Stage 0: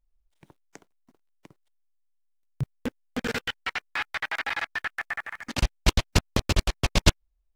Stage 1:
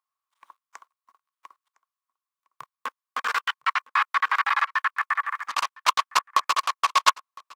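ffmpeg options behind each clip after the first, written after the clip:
ffmpeg -i in.wav -af "highpass=frequency=1100:width_type=q:width=11,aecho=1:1:1009:0.0668" out.wav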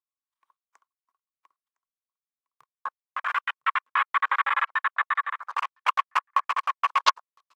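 ffmpeg -i in.wav -af "aphaser=in_gain=1:out_gain=1:delay=3.1:decay=0.26:speed=1.4:type=sinusoidal,afwtdn=0.0355,volume=-1.5dB" out.wav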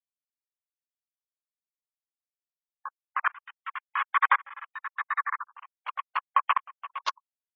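ffmpeg -i in.wav -af "afftfilt=real='re*gte(hypot(re,im),0.0224)':imag='im*gte(hypot(re,im),0.0224)':win_size=1024:overlap=0.75,aeval=exprs='val(0)*pow(10,-28*if(lt(mod(-0.91*n/s,1),2*abs(-0.91)/1000),1-mod(-0.91*n/s,1)/(2*abs(-0.91)/1000),(mod(-0.91*n/s,1)-2*abs(-0.91)/1000)/(1-2*abs(-0.91)/1000))/20)':channel_layout=same,volume=5dB" out.wav

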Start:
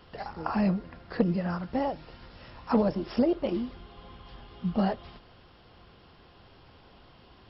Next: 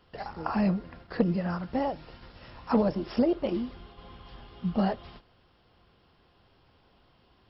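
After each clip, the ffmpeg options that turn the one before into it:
ffmpeg -i in.wav -af "agate=range=-8dB:threshold=-49dB:ratio=16:detection=peak" out.wav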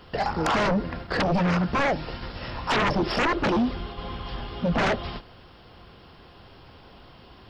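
ffmpeg -i in.wav -af "aeval=exprs='0.251*sin(PI/2*7.08*val(0)/0.251)':channel_layout=same,volume=-7dB" out.wav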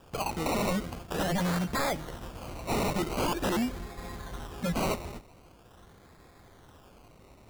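ffmpeg -i in.wav -af "acrusher=samples=21:mix=1:aa=0.000001:lfo=1:lforange=12.6:lforate=0.44,volume=-6dB" out.wav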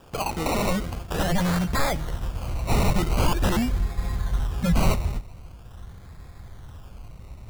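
ffmpeg -i in.wav -af "asubboost=boost=6:cutoff=130,volume=4.5dB" out.wav

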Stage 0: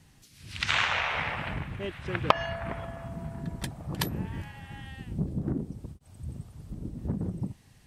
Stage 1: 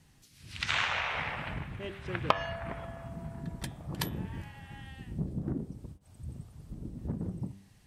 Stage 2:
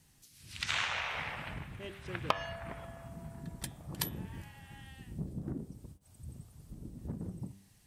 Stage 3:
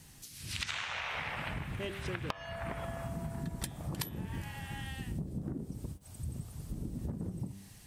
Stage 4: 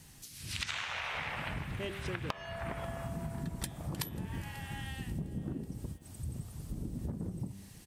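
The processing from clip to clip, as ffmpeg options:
ffmpeg -i in.wav -af "bandreject=frequency=98.07:width_type=h:width=4,bandreject=frequency=196.14:width_type=h:width=4,bandreject=frequency=294.21:width_type=h:width=4,bandreject=frequency=392.28:width_type=h:width=4,bandreject=frequency=490.35:width_type=h:width=4,bandreject=frequency=588.42:width_type=h:width=4,bandreject=frequency=686.49:width_type=h:width=4,bandreject=frequency=784.56:width_type=h:width=4,bandreject=frequency=882.63:width_type=h:width=4,bandreject=frequency=980.7:width_type=h:width=4,bandreject=frequency=1078.77:width_type=h:width=4,bandreject=frequency=1176.84:width_type=h:width=4,bandreject=frequency=1274.91:width_type=h:width=4,bandreject=frequency=1372.98:width_type=h:width=4,bandreject=frequency=1471.05:width_type=h:width=4,bandreject=frequency=1569.12:width_type=h:width=4,bandreject=frequency=1667.19:width_type=h:width=4,bandreject=frequency=1765.26:width_type=h:width=4,bandreject=frequency=1863.33:width_type=h:width=4,bandreject=frequency=1961.4:width_type=h:width=4,bandreject=frequency=2059.47:width_type=h:width=4,bandreject=frequency=2157.54:width_type=h:width=4,bandreject=frequency=2255.61:width_type=h:width=4,bandreject=frequency=2353.68:width_type=h:width=4,bandreject=frequency=2451.75:width_type=h:width=4,bandreject=frequency=2549.82:width_type=h:width=4,bandreject=frequency=2647.89:width_type=h:width=4,bandreject=frequency=2745.96:width_type=h:width=4,bandreject=frequency=2844.03:width_type=h:width=4,bandreject=frequency=2942.1:width_type=h:width=4,bandreject=frequency=3040.17:width_type=h:width=4,bandreject=frequency=3138.24:width_type=h:width=4,bandreject=frequency=3236.31:width_type=h:width=4,bandreject=frequency=3334.38:width_type=h:width=4,bandreject=frequency=3432.45:width_type=h:width=4,bandreject=frequency=3530.52:width_type=h:width=4,bandreject=frequency=3628.59:width_type=h:width=4,bandreject=frequency=3726.66:width_type=h:width=4,bandreject=frequency=3824.73:width_type=h:width=4,volume=-3.5dB" out.wav
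ffmpeg -i in.wav -af "highshelf=frequency=5800:gain=11.5,volume=-5dB" out.wav
ffmpeg -i in.wav -af "acompressor=threshold=-44dB:ratio=12,volume=10dB" out.wav
ffmpeg -i in.wav -af "aecho=1:1:540|1080|1620|2160:0.0891|0.0455|0.0232|0.0118" out.wav

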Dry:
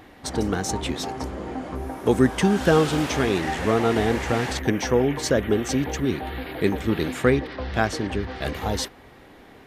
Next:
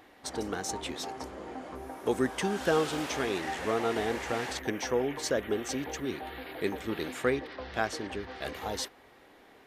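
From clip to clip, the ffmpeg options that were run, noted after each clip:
ffmpeg -i in.wav -af "bass=frequency=250:gain=-10,treble=frequency=4000:gain=1,volume=-7dB" out.wav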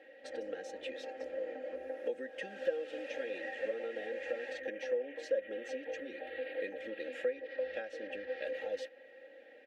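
ffmpeg -i in.wav -filter_complex "[0:a]aecho=1:1:3.7:0.84,acompressor=threshold=-34dB:ratio=6,asplit=3[link_01][link_02][link_03];[link_01]bandpass=frequency=530:width_type=q:width=8,volume=0dB[link_04];[link_02]bandpass=frequency=1840:width_type=q:width=8,volume=-6dB[link_05];[link_03]bandpass=frequency=2480:width_type=q:width=8,volume=-9dB[link_06];[link_04][link_05][link_06]amix=inputs=3:normalize=0,volume=7.5dB" out.wav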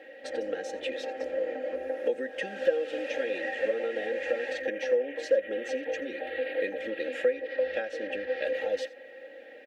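ffmpeg -i in.wav -af "aecho=1:1:85:0.0841,volume=8.5dB" out.wav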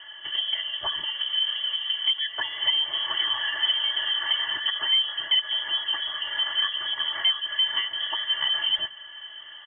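ffmpeg -i in.wav -af "volume=22.5dB,asoftclip=hard,volume=-22.5dB,lowpass=frequency=3100:width_type=q:width=0.5098,lowpass=frequency=3100:width_type=q:width=0.6013,lowpass=frequency=3100:width_type=q:width=0.9,lowpass=frequency=3100:width_type=q:width=2.563,afreqshift=-3600,volume=5dB" out.wav

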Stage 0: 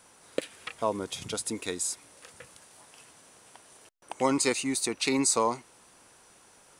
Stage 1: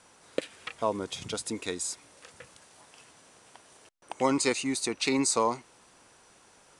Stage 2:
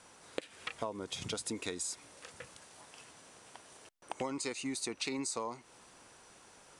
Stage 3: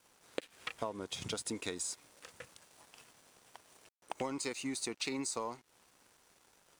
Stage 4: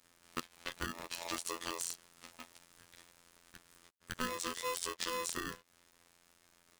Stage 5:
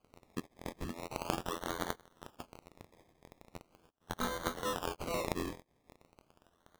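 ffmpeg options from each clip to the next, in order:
ffmpeg -i in.wav -af "lowpass=8300" out.wav
ffmpeg -i in.wav -af "acompressor=threshold=-34dB:ratio=10" out.wav
ffmpeg -i in.wav -af "aeval=exprs='sgn(val(0))*max(abs(val(0))-0.00119,0)':channel_layout=same" out.wav
ffmpeg -i in.wav -af "afftfilt=real='hypot(re,im)*cos(PI*b)':imag='0':win_size=2048:overlap=0.75,aeval=exprs='val(0)*sgn(sin(2*PI*760*n/s))':channel_layout=same,volume=2.5dB" out.wav
ffmpeg -i in.wav -af "acrusher=samples=24:mix=1:aa=0.000001:lfo=1:lforange=14.4:lforate=0.4,volume=2dB" out.wav

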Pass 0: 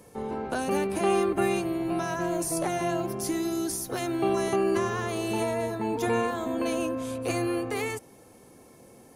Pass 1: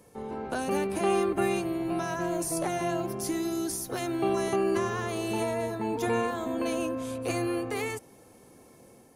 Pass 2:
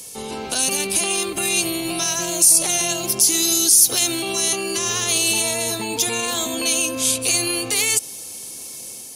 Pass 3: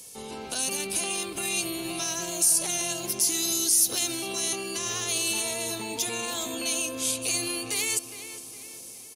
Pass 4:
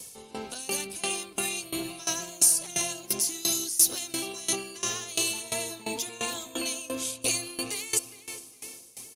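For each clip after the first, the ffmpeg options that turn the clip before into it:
ffmpeg -i in.wav -af "dynaudnorm=framelen=270:gausssize=3:maxgain=3dB,volume=-4.5dB" out.wav
ffmpeg -i in.wav -af "equalizer=frequency=5500:width_type=o:width=2.9:gain=9.5,alimiter=limit=-24dB:level=0:latency=1:release=66,aexciter=amount=5.5:drive=3.2:freq=2500,volume=5dB" out.wav
ffmpeg -i in.wav -filter_complex "[0:a]asplit=2[link_01][link_02];[link_02]adelay=410,lowpass=frequency=3700:poles=1,volume=-11.5dB,asplit=2[link_03][link_04];[link_04]adelay=410,lowpass=frequency=3700:poles=1,volume=0.48,asplit=2[link_05][link_06];[link_06]adelay=410,lowpass=frequency=3700:poles=1,volume=0.48,asplit=2[link_07][link_08];[link_08]adelay=410,lowpass=frequency=3700:poles=1,volume=0.48,asplit=2[link_09][link_10];[link_10]adelay=410,lowpass=frequency=3700:poles=1,volume=0.48[link_11];[link_01][link_03][link_05][link_07][link_09][link_11]amix=inputs=6:normalize=0,volume=-8.5dB" out.wav
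ffmpeg -i in.wav -af "aphaser=in_gain=1:out_gain=1:delay=5:decay=0.25:speed=1.1:type=triangular,aeval=exprs='val(0)*pow(10,-19*if(lt(mod(2.9*n/s,1),2*abs(2.9)/1000),1-mod(2.9*n/s,1)/(2*abs(2.9)/1000),(mod(2.9*n/s,1)-2*abs(2.9)/1000)/(1-2*abs(2.9)/1000))/20)':channel_layout=same,volume=4dB" out.wav

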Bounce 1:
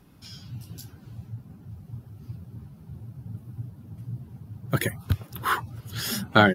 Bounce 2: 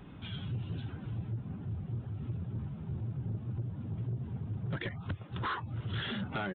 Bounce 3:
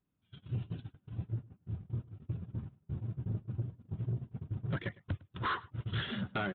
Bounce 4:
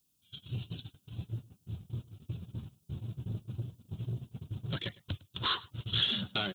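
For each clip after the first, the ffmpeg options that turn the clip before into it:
ffmpeg -i in.wav -af "acompressor=threshold=-34dB:ratio=8,aresample=8000,asoftclip=type=tanh:threshold=-36dB,aresample=44100,volume=6dB" out.wav
ffmpeg -i in.wav -af "bandreject=frequency=840:width=15,agate=range=-36dB:threshold=-36dB:ratio=16:detection=peak,aecho=1:1:106:0.0794,volume=1.5dB" out.wav
ffmpeg -i in.wav -af "aexciter=amount=5.8:drive=8.2:freq=2900,volume=-1.5dB" out.wav

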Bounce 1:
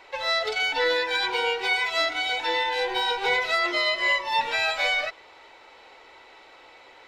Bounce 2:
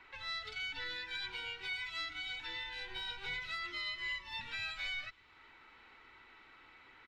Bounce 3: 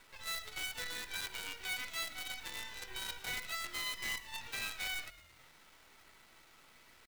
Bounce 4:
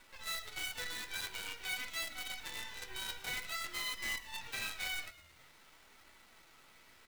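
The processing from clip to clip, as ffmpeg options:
ffmpeg -i in.wav -filter_complex "[0:a]firequalizer=gain_entry='entry(220,0);entry(550,-19);entry(1300,-2);entry(5200,-16);entry(11000,-19)':delay=0.05:min_phase=1,acrossover=split=160|3000[link_01][link_02][link_03];[link_02]acompressor=threshold=-58dB:ratio=2[link_04];[link_01][link_04][link_03]amix=inputs=3:normalize=0,volume=-1dB" out.wav
ffmpeg -i in.wav -filter_complex "[0:a]acrusher=bits=7:dc=4:mix=0:aa=0.000001,asplit=6[link_01][link_02][link_03][link_04][link_05][link_06];[link_02]adelay=110,afreqshift=-41,volume=-17.5dB[link_07];[link_03]adelay=220,afreqshift=-82,volume=-22.5dB[link_08];[link_04]adelay=330,afreqshift=-123,volume=-27.6dB[link_09];[link_05]adelay=440,afreqshift=-164,volume=-32.6dB[link_10];[link_06]adelay=550,afreqshift=-205,volume=-37.6dB[link_11];[link_01][link_07][link_08][link_09][link_10][link_11]amix=inputs=6:normalize=0" out.wav
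ffmpeg -i in.wav -af "flanger=delay=3.4:depth=9.8:regen=-49:speed=0.49:shape=sinusoidal,volume=4dB" out.wav

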